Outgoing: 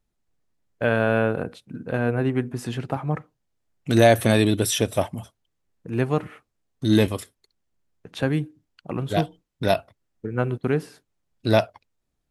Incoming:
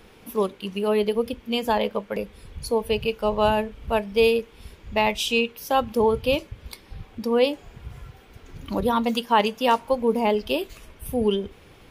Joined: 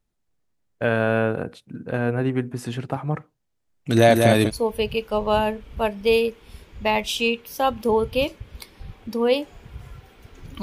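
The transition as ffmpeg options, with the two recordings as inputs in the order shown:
ffmpeg -i cue0.wav -i cue1.wav -filter_complex "[0:a]asettb=1/sr,asplit=3[link_01][link_02][link_03];[link_01]atrim=end=3.484[link_04];[link_02]atrim=start=3.48:end=4.51,asetpts=PTS-STARTPTS,afade=type=in:duration=0.004:curve=qsin,afade=type=out:start_time=1.026:duration=0.004:curve=qsin,aecho=1:1:196:0.631,atrim=end_sample=45423[link_05];[link_03]atrim=start=4.506[link_06];[link_04][link_05]acrossfade=duration=0.004:curve1=hsin:curve2=qsin[link_07];[link_07][link_06]acrossfade=duration=0.004:curve1=qsin:curve2=hsin,apad=whole_dur=10.62,atrim=end=10.62,atrim=end=4.51,asetpts=PTS-STARTPTS[link_08];[1:a]atrim=start=2.56:end=8.73,asetpts=PTS-STARTPTS[link_09];[link_08][link_09]acrossfade=duration=0.06:curve1=tri:curve2=tri" out.wav

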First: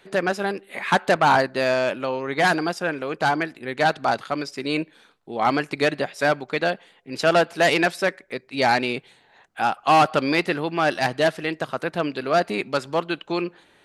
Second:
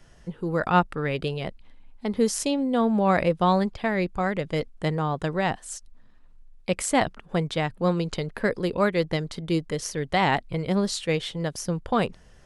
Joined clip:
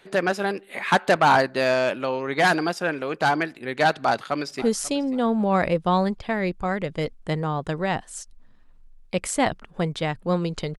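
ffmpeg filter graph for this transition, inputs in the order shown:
ffmpeg -i cue0.wav -i cue1.wav -filter_complex "[0:a]apad=whole_dur=10.78,atrim=end=10.78,atrim=end=4.622[link_01];[1:a]atrim=start=2.168:end=8.33[link_02];[link_01][link_02]acrossfade=duration=0.004:curve1=hsin:curve2=hsin,asplit=2[link_03][link_04];[link_04]afade=type=in:start_time=3.92:duration=0.01,afade=type=out:start_time=4.62:duration=0.01,aecho=0:1:540|1080:0.133352|0.033338[link_05];[link_03][link_05]amix=inputs=2:normalize=0" out.wav

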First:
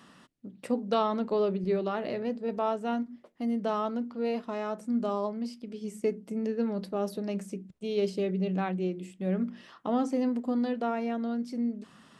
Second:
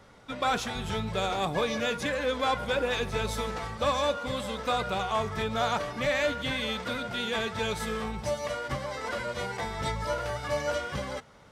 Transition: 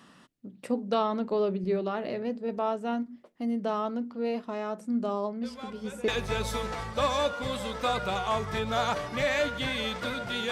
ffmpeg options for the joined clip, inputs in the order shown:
ffmpeg -i cue0.wav -i cue1.wav -filter_complex "[1:a]asplit=2[link_01][link_02];[0:a]apad=whole_dur=10.51,atrim=end=10.51,atrim=end=6.082[link_03];[link_02]atrim=start=2.918:end=7.35[link_04];[link_01]atrim=start=2.27:end=2.92,asetpts=PTS-STARTPTS,volume=-16dB,afade=type=in:duration=0.004:curve=hsin,afade=type=out:start_time=0.646:duration=0.004:curve=hsin,adelay=5430[link_05];[link_03][link_04]acrossfade=duration=0.004:curve1=hsin:curve2=hsin[link_06];[link_06][link_05]amix=inputs=2:normalize=0" out.wav

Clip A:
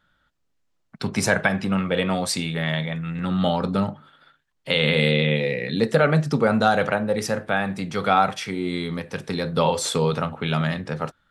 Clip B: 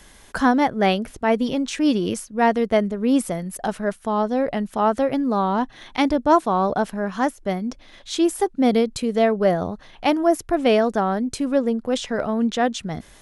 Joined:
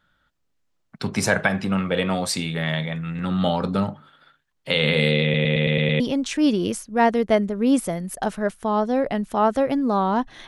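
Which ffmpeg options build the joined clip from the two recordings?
ffmpeg -i cue0.wav -i cue1.wav -filter_complex "[0:a]apad=whole_dur=10.47,atrim=end=10.47,asplit=7[link_01][link_02][link_03][link_04][link_05][link_06][link_07];[link_01]atrim=end=5.342[link_08];[link_02]atrim=start=5.228:end=5.342[link_09];[link_03]atrim=start=5.228:end=5.342[link_10];[link_04]atrim=start=5.228:end=5.342[link_11];[link_05]atrim=start=5.228:end=5.342[link_12];[link_06]atrim=start=5.228:end=5.342[link_13];[link_07]atrim=start=5.228:end=5.342[link_14];[1:a]atrim=start=1.418:end=5.89[link_15];[link_08][link_09]acrossfade=duration=0.004:curve1=hsin:curve2=hsin[link_16];[link_16][link_10]acrossfade=duration=0.004:curve1=hsin:curve2=hsin[link_17];[link_17][link_11]acrossfade=duration=0.004:curve1=hsin:curve2=hsin[link_18];[link_18][link_12]acrossfade=duration=0.004:curve1=hsin:curve2=hsin[link_19];[link_19][link_13]acrossfade=duration=0.004:curve1=hsin:curve2=hsin[link_20];[link_20][link_14]acrossfade=duration=0.004:curve1=hsin:curve2=hsin[link_21];[link_21][link_15]acrossfade=duration=0.004:curve1=hsin:curve2=hsin" out.wav

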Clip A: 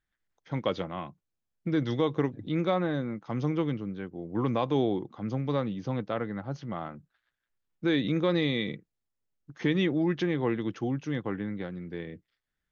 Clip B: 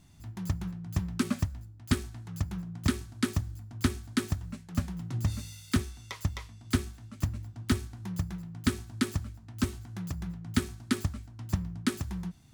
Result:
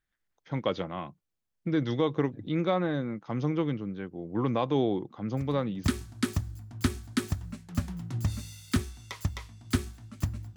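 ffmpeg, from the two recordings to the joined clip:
ffmpeg -i cue0.wav -i cue1.wav -filter_complex "[1:a]asplit=2[link_01][link_02];[0:a]apad=whole_dur=10.56,atrim=end=10.56,atrim=end=5.842[link_03];[link_02]atrim=start=2.838:end=7.56[link_04];[link_01]atrim=start=2.37:end=2.84,asetpts=PTS-STARTPTS,volume=-13dB,afade=type=in:duration=0.004:curve=hsin,afade=type=out:start_time=0.466:duration=0.004:curve=hsin,adelay=236817S[link_05];[link_03][link_04]acrossfade=duration=0.004:curve1=hsin:curve2=hsin[link_06];[link_06][link_05]amix=inputs=2:normalize=0" out.wav

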